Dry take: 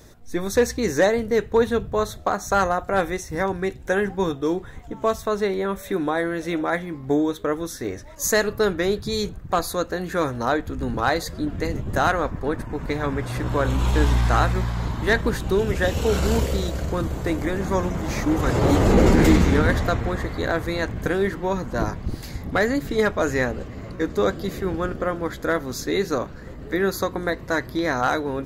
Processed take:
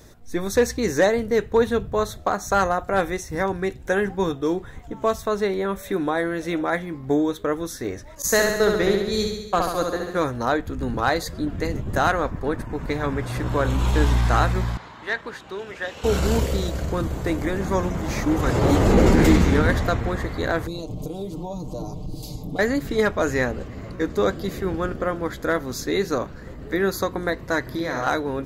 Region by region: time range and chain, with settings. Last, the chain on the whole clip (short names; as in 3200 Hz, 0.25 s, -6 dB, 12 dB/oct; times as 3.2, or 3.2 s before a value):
8.22–10.18 expander -24 dBFS + flutter echo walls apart 11.8 m, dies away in 0.99 s
14.77–16.04 band-pass 2600 Hz, Q 0.58 + high shelf 2000 Hz -7.5 dB
20.67–22.59 comb 6.6 ms, depth 70% + compressor, threshold -26 dBFS + Butterworth band-stop 1700 Hz, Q 0.68
27.61–28.07 compressor 4:1, threshold -23 dBFS + flutter echo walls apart 9.4 m, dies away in 0.71 s
whole clip: dry